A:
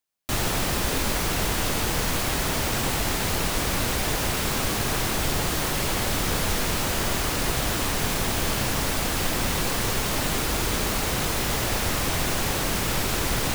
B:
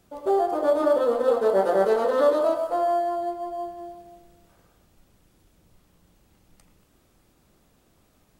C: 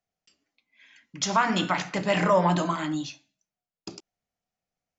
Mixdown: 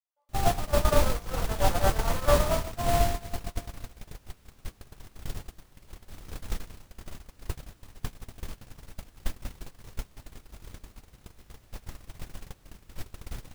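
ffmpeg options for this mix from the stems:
ffmpeg -i stem1.wav -i stem2.wav -i stem3.wav -filter_complex "[0:a]lowshelf=frequency=260:gain=4,volume=-3dB[link_01];[1:a]highpass=frequency=690:width=0.5412,highpass=frequency=690:width=1.3066,adelay=50,volume=1.5dB[link_02];[2:a]volume=-15dB[link_03];[link_01][link_02][link_03]amix=inputs=3:normalize=0,agate=range=-36dB:threshold=-21dB:ratio=16:detection=peak,lowshelf=frequency=91:gain=10" out.wav

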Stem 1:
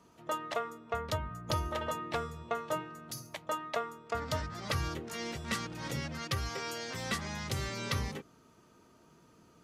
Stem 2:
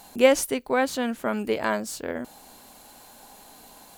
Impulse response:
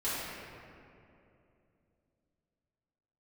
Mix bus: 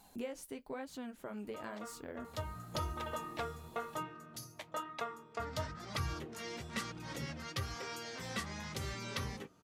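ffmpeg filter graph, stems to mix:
-filter_complex "[0:a]adelay=1250,volume=-1dB[link_01];[1:a]lowshelf=frequency=320:gain=6,acompressor=threshold=-26dB:ratio=5,volume=-10.5dB,asplit=2[link_02][link_03];[link_03]apad=whole_len=479836[link_04];[link_01][link_04]sidechaincompress=threshold=-48dB:ratio=8:attack=20:release=290[link_05];[link_05][link_02]amix=inputs=2:normalize=0,flanger=delay=0.8:depth=9.9:regen=-46:speed=1:shape=sinusoidal"

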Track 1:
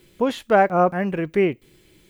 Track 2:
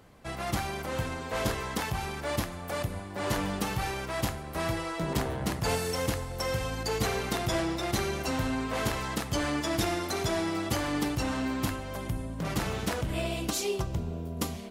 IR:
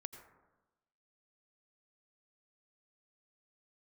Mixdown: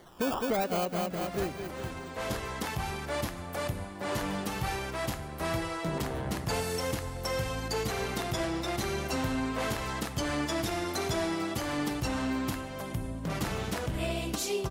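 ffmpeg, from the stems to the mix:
-filter_complex "[0:a]equalizer=frequency=3200:width_type=o:width=0.48:gain=14,acrusher=samples=17:mix=1:aa=0.000001:lfo=1:lforange=10.2:lforate=0.97,deesser=0.9,volume=-2.5dB,afade=type=out:start_time=0.76:duration=0.33:silence=0.298538,asplit=3[link_01][link_02][link_03];[link_02]volume=-8.5dB[link_04];[1:a]bandreject=frequency=50:width_type=h:width=6,bandreject=frequency=100:width_type=h:width=6,adelay=850,volume=-2.5dB,asplit=2[link_05][link_06];[link_06]volume=-7.5dB[link_07];[link_03]apad=whole_len=685990[link_08];[link_05][link_08]sidechaincompress=threshold=-38dB:ratio=3:attack=16:release=1270[link_09];[2:a]atrim=start_sample=2205[link_10];[link_07][link_10]afir=irnorm=-1:irlink=0[link_11];[link_04]aecho=0:1:208|416|624|832|1040|1248|1456:1|0.51|0.26|0.133|0.0677|0.0345|0.0176[link_12];[link_01][link_09][link_11][link_12]amix=inputs=4:normalize=0,alimiter=limit=-20.5dB:level=0:latency=1:release=175"

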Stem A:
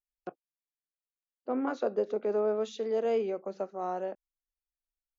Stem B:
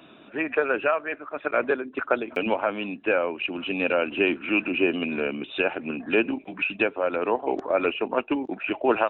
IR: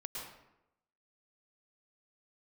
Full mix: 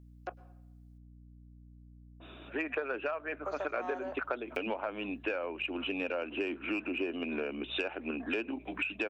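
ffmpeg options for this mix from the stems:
-filter_complex "[0:a]asoftclip=type=tanh:threshold=-27.5dB,highpass=710,acontrast=72,volume=-0.5dB,asplit=3[link_01][link_02][link_03];[link_01]atrim=end=0.98,asetpts=PTS-STARTPTS,afade=type=out:start_time=0.976:duration=0.004:curve=hsin[link_04];[link_02]atrim=start=0.98:end=3.44,asetpts=PTS-STARTPTS,volume=0[link_05];[link_03]atrim=start=3.44,asetpts=PTS-STARTPTS,afade=type=in:duration=0.004:curve=hsin[link_06];[link_04][link_05][link_06]concat=n=3:v=0:a=1,asplit=2[link_07][link_08];[link_08]volume=-17dB[link_09];[1:a]highshelf=frequency=3200:gain=5,asoftclip=type=tanh:threshold=-8.5dB,adynamicequalizer=threshold=0.0126:dfrequency=1700:dqfactor=0.7:tfrequency=1700:tqfactor=0.7:attack=5:release=100:ratio=0.375:range=3:mode=cutabove:tftype=highshelf,adelay=2200,volume=-1.5dB[link_10];[2:a]atrim=start_sample=2205[link_11];[link_09][link_11]afir=irnorm=-1:irlink=0[link_12];[link_07][link_10][link_12]amix=inputs=3:normalize=0,highpass=frequency=230:width=0.5412,highpass=frequency=230:width=1.3066,aeval=exprs='val(0)+0.00224*(sin(2*PI*60*n/s)+sin(2*PI*2*60*n/s)/2+sin(2*PI*3*60*n/s)/3+sin(2*PI*4*60*n/s)/4+sin(2*PI*5*60*n/s)/5)':channel_layout=same,acompressor=threshold=-32dB:ratio=5"

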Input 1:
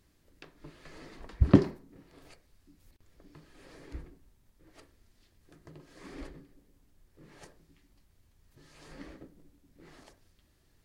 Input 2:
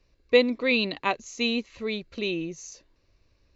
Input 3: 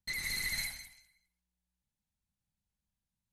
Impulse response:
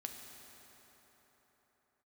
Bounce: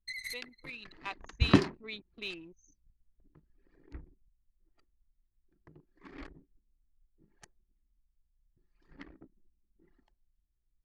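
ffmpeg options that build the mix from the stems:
-filter_complex "[0:a]volume=2dB[link_01];[1:a]aeval=exprs='val(0)+0.00251*(sin(2*PI*60*n/s)+sin(2*PI*2*60*n/s)/2+sin(2*PI*3*60*n/s)/3+sin(2*PI*4*60*n/s)/4+sin(2*PI*5*60*n/s)/5)':channel_layout=same,volume=-12.5dB,afade=type=in:start_time=0.79:duration=0.63:silence=0.281838,asplit=2[link_02][link_03];[2:a]volume=-7.5dB[link_04];[link_03]apad=whole_len=146684[link_05];[link_04][link_05]sidechaincompress=threshold=-52dB:ratio=6:attack=16:release=917[link_06];[link_01][link_02][link_06]amix=inputs=3:normalize=0,equalizer=frequency=530:width=2.6:gain=-6.5,anlmdn=0.0631,tiltshelf=frequency=670:gain=-6.5"

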